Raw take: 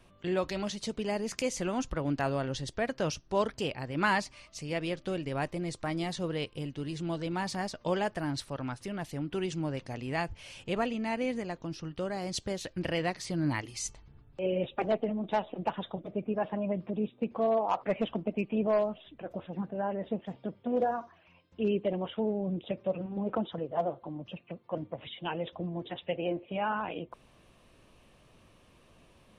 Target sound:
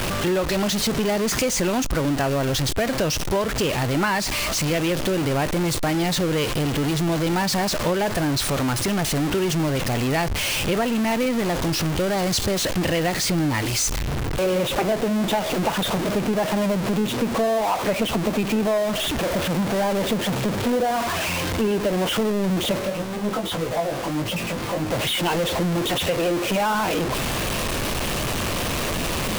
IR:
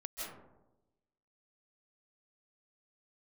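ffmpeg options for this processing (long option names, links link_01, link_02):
-filter_complex "[0:a]aeval=exprs='val(0)+0.5*0.0473*sgn(val(0))':channel_layout=same,acompressor=threshold=-26dB:ratio=6,asplit=3[link_01][link_02][link_03];[link_01]afade=type=out:start_time=22.78:duration=0.02[link_04];[link_02]flanger=delay=17.5:depth=3.6:speed=1.6,afade=type=in:start_time=22.78:duration=0.02,afade=type=out:start_time=24.89:duration=0.02[link_05];[link_03]afade=type=in:start_time=24.89:duration=0.02[link_06];[link_04][link_05][link_06]amix=inputs=3:normalize=0,volume=7.5dB"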